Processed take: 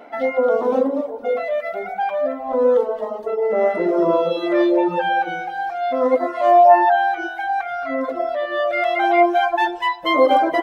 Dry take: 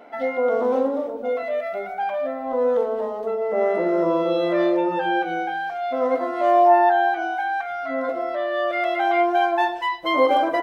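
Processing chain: echo whose repeats swap between lows and highs 112 ms, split 820 Hz, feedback 60%, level -5 dB; reverb removal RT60 1.6 s; trim +4 dB

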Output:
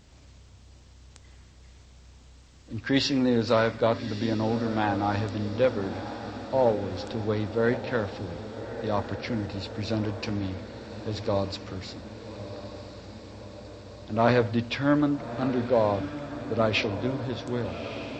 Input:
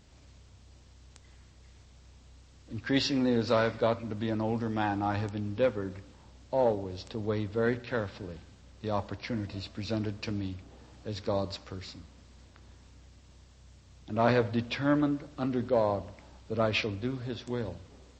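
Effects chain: echo that smears into a reverb 1220 ms, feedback 65%, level -11.5 dB; trim +3.5 dB

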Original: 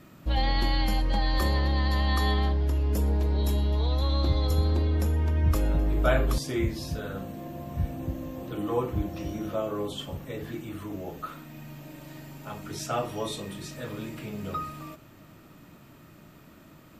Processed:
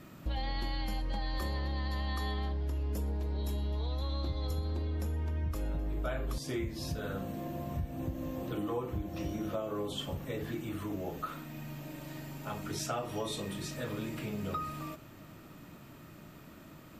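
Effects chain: compression, threshold -32 dBFS, peak gain reduction 13.5 dB

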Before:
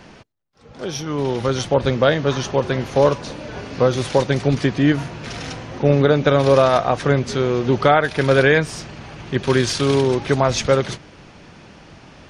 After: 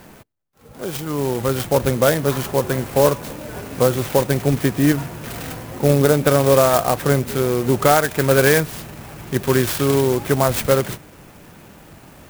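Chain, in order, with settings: sampling jitter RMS 0.059 ms

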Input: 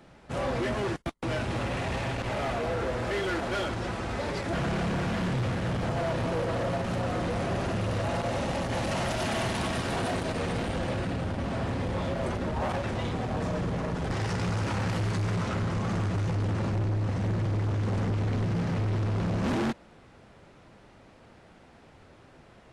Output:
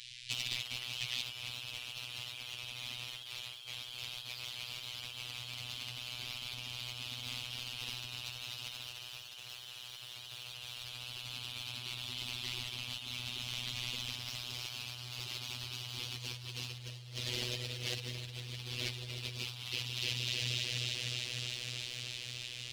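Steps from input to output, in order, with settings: inverse Chebyshev band-stop 290–900 Hz, stop band 70 dB; in parallel at -3.5 dB: integer overflow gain 36 dB; on the sum: frequency weighting D; echo whose repeats swap between lows and highs 153 ms, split 2.4 kHz, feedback 89%, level -2.5 dB; robot voice 123 Hz; saturation -24.5 dBFS, distortion -5 dB; compressor with a negative ratio -42 dBFS, ratio -0.5; trim +1 dB

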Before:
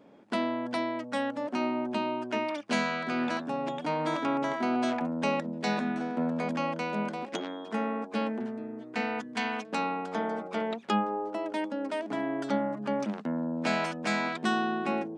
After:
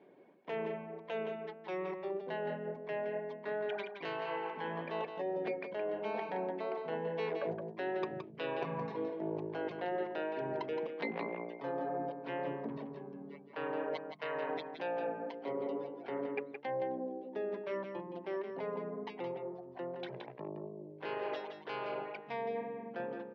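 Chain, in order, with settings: Doppler pass-by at 6.39 s, 12 m/s, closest 14 m; three-band isolator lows -18 dB, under 420 Hz, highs -23 dB, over 5.6 kHz; wide varispeed 0.65×; wow and flutter 17 cents; reverb removal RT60 1.8 s; reverse; compression 16:1, threshold -50 dBFS, peak gain reduction 20.5 dB; reverse; high-pass 250 Hz 6 dB/octave; peaking EQ 1.3 kHz -10.5 dB 0.55 oct; hum notches 50/100/150/200/250/300/350 Hz; on a send: delay 169 ms -7 dB; on the sum: trim +18 dB

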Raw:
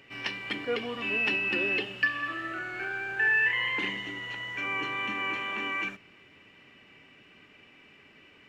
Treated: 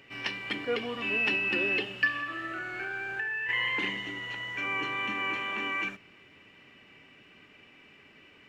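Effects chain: 2.19–3.49 s: compression 12:1, threshold -31 dBFS, peak gain reduction 10 dB

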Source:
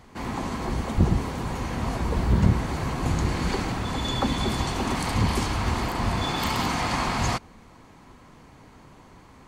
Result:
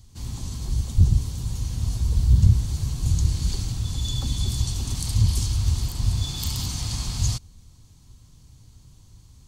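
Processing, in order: FFT filter 110 Hz 0 dB, 210 Hz -16 dB, 610 Hz -25 dB, 2.1 kHz -24 dB, 3.4 kHz -8 dB, 5.9 kHz -1 dB; trim +6 dB

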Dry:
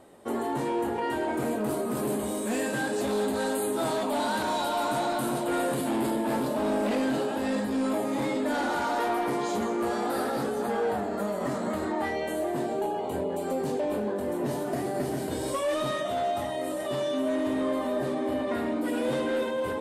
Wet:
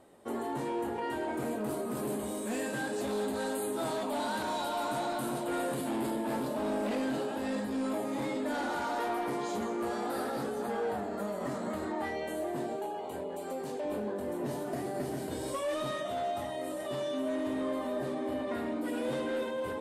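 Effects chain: 12.76–13.85 s: bass shelf 330 Hz -7.5 dB; trim -5.5 dB

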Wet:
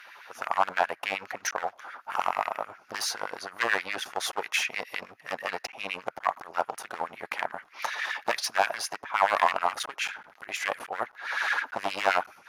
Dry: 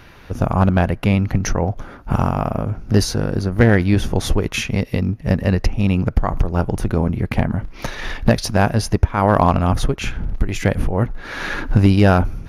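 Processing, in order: one-sided clip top -21.5 dBFS, bottom -5.5 dBFS; LFO high-pass sine 9.5 Hz 720–2000 Hz; trim -5 dB

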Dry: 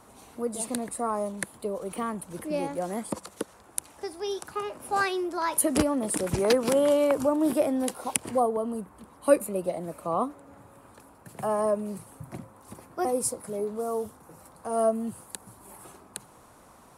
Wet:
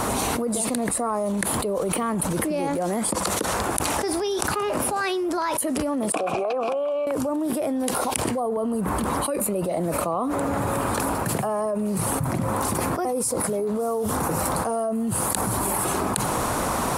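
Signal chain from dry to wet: 6.12–7.07 s: vowel filter a; level flattener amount 100%; trim -10.5 dB

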